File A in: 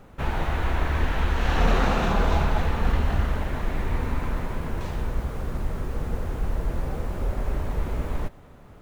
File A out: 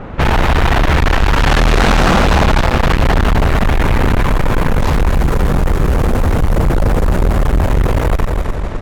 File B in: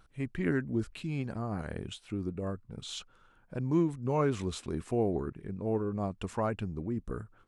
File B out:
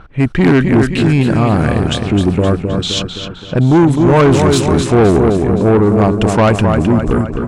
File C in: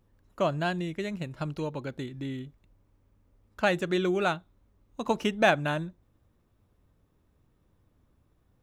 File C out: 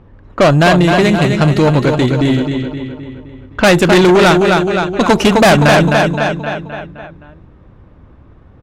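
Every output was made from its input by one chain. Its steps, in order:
feedback delay 260 ms, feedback 52%, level -7 dB; valve stage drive 30 dB, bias 0.3; level-controlled noise filter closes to 2.1 kHz, open at -32 dBFS; peak normalisation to -3 dBFS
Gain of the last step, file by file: +22.0 dB, +25.0 dB, +25.0 dB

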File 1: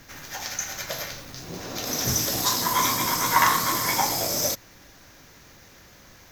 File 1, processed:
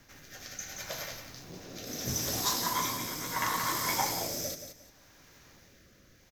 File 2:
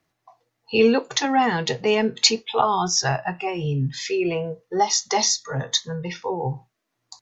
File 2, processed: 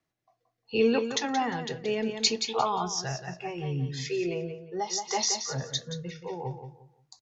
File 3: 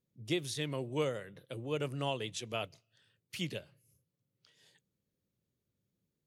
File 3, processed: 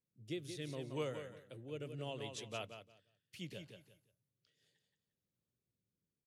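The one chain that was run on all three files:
feedback delay 176 ms, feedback 24%, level -8.5 dB; rotary cabinet horn 0.7 Hz; trim -6.5 dB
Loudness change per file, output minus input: -8.5 LU, -7.5 LU, -7.5 LU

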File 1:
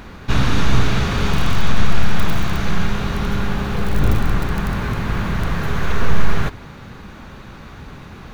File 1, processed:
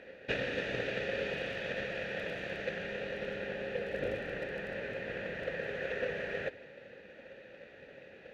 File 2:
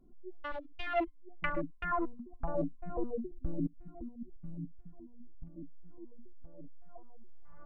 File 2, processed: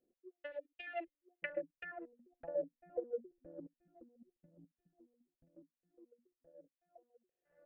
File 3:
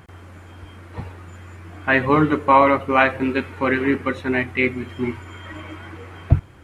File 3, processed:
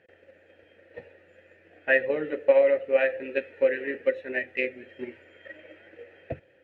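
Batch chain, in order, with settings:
vowel filter e; transient shaper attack +7 dB, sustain +2 dB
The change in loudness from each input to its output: -15.5 LU, -6.5 LU, -6.0 LU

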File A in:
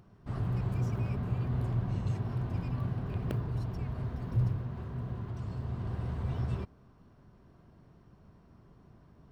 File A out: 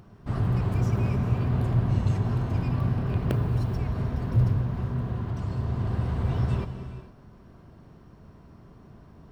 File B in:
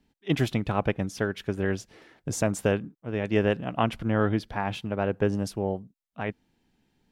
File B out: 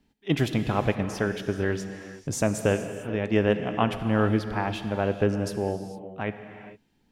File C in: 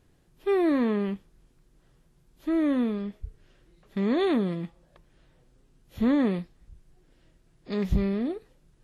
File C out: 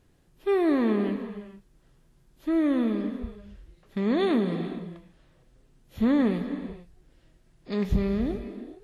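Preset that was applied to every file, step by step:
gated-style reverb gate 480 ms flat, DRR 8 dB; normalise loudness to -27 LUFS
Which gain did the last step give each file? +7.5 dB, +0.5 dB, 0.0 dB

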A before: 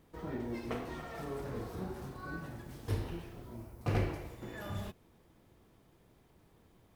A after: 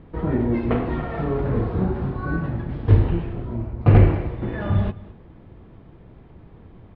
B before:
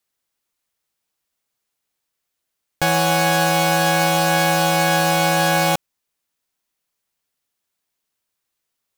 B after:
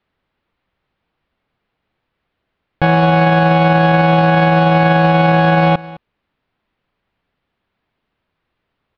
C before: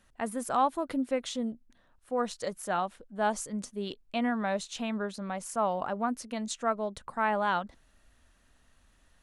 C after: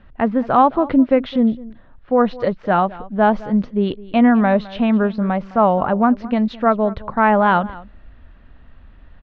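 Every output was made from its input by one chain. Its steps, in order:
Bessel low-pass 2.2 kHz, order 8; bass shelf 250 Hz +8.5 dB; peak limiter -16.5 dBFS; delay 211 ms -19.5 dB; peak normalisation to -3 dBFS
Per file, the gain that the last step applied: +13.5 dB, +12.5 dB, +13.0 dB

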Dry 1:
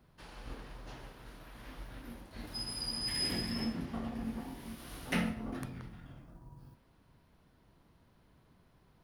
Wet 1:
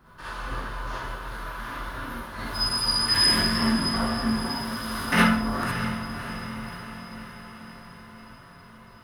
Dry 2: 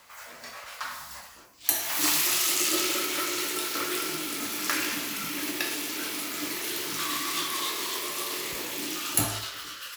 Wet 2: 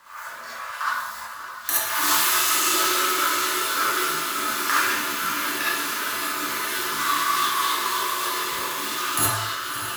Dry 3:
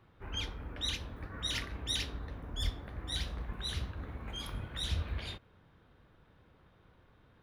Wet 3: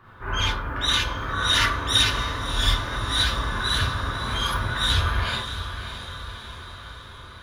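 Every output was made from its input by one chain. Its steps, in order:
high-order bell 1.3 kHz +9.5 dB 1.1 oct; on a send: echo that smears into a reverb 607 ms, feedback 60%, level -10 dB; on the sum: gated-style reverb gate 90 ms rising, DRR -6 dB; peak normalisation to -6 dBFS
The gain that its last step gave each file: +5.0 dB, -4.0 dB, +6.5 dB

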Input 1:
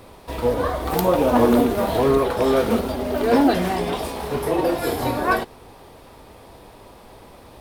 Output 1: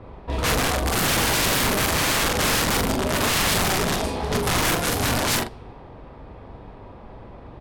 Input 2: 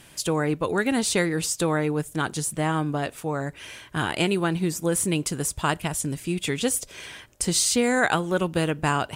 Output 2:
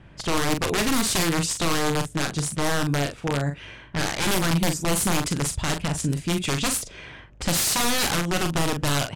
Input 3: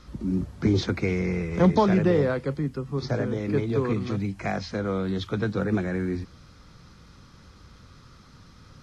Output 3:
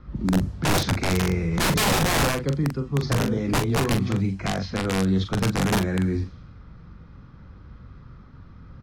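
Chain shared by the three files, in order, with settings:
integer overflow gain 18 dB; tone controls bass +6 dB, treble +2 dB; level-controlled noise filter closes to 1.6 kHz, open at -18.5 dBFS; hum 50 Hz, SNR 30 dB; doubling 42 ms -7 dB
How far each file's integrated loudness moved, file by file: -0.5 LU, +1.0 LU, +2.5 LU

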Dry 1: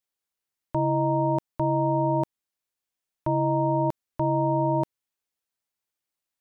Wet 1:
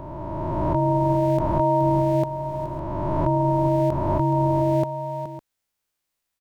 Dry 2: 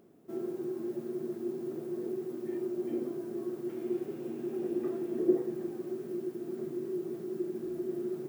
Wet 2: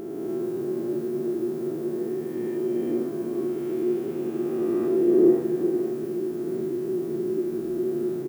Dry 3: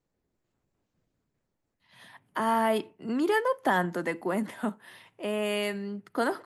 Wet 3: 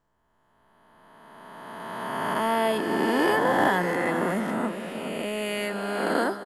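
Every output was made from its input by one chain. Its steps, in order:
reverse spectral sustain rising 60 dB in 2.70 s; bass shelf 71 Hz +8 dB; multi-tap echo 421/556 ms -10.5/-15 dB; peak normalisation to -9 dBFS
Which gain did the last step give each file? +2.5 dB, +4.5 dB, -1.5 dB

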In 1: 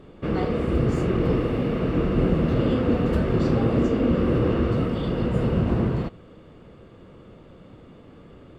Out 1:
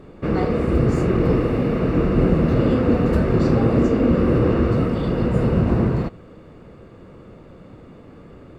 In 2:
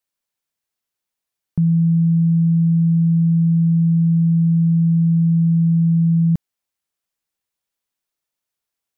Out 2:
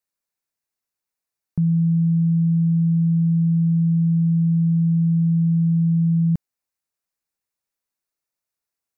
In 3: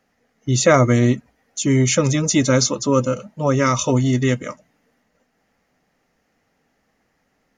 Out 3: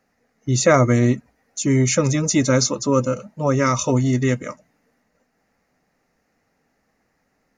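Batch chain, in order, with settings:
peaking EQ 3.2 kHz -9 dB 0.29 oct; normalise loudness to -19 LUFS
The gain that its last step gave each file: +4.0 dB, -3.0 dB, -1.0 dB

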